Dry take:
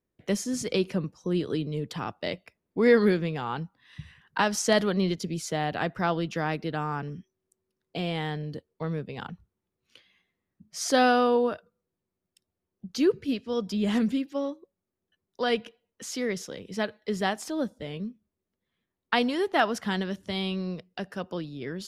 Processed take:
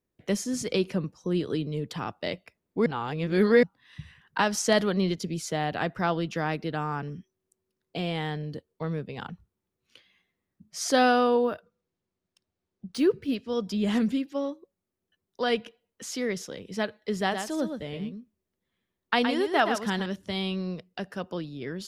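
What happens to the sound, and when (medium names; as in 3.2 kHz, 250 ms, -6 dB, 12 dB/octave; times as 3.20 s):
2.86–3.63 s: reverse
11.44–13.35 s: decimation joined by straight lines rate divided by 3×
17.20–20.06 s: delay 118 ms -7 dB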